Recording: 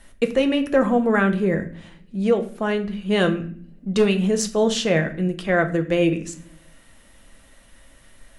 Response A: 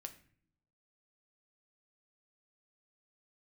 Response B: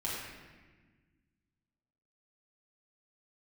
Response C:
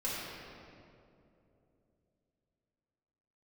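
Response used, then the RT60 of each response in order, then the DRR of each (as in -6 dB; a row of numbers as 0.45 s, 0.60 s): A; no single decay rate, 1.4 s, 2.8 s; 6.0 dB, -7.5 dB, -9.0 dB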